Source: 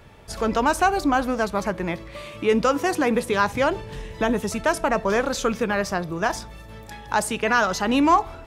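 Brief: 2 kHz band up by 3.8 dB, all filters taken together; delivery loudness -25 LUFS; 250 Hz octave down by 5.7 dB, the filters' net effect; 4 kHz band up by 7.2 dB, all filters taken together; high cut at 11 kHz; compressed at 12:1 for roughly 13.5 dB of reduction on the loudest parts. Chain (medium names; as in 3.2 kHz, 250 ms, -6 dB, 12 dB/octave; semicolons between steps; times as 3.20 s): low-pass 11 kHz; peaking EQ 250 Hz -7 dB; peaking EQ 2 kHz +3.5 dB; peaking EQ 4 kHz +8.5 dB; compression 12:1, threshold -26 dBFS; trim +6 dB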